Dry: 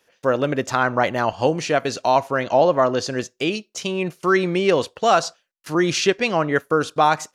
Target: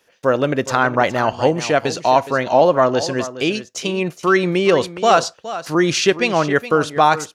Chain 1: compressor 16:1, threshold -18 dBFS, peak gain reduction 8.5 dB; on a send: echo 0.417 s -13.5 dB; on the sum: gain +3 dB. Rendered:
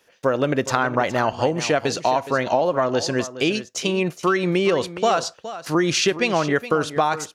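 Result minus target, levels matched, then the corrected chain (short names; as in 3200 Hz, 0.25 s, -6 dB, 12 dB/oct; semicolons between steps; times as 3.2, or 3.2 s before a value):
compressor: peak gain reduction +8.5 dB
on a send: echo 0.417 s -13.5 dB; on the sum: gain +3 dB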